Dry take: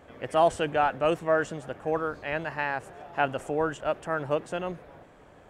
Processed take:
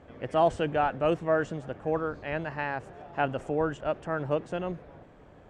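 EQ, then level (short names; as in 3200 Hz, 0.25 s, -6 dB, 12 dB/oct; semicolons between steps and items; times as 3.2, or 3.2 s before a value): LPF 6500 Hz 12 dB/oct; low shelf 450 Hz +7.5 dB; -4.0 dB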